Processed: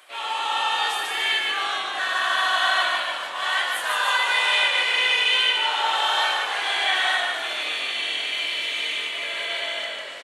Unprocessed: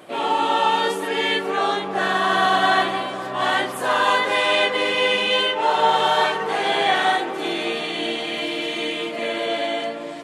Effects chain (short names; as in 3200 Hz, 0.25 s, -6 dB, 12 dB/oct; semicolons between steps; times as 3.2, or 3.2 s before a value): HPF 1400 Hz 12 dB/oct; on a send: frequency-shifting echo 0.149 s, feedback 53%, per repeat -45 Hz, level -3 dB